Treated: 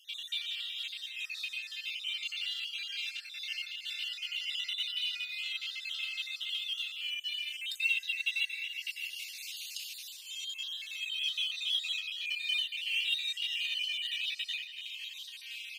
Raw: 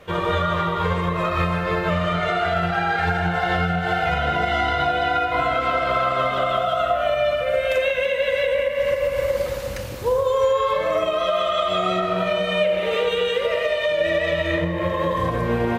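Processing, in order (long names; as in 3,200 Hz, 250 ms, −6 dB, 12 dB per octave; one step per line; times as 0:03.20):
time-frequency cells dropped at random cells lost 36%
Chebyshev high-pass filter 2,600 Hz, order 5
high-shelf EQ 11,000 Hz −6 dB
in parallel at −10 dB: hard clipping −34 dBFS, distortion −11 dB
on the sum: floating-point word with a short mantissa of 4 bits
on a send at −20.5 dB: convolution reverb RT60 2.9 s, pre-delay 60 ms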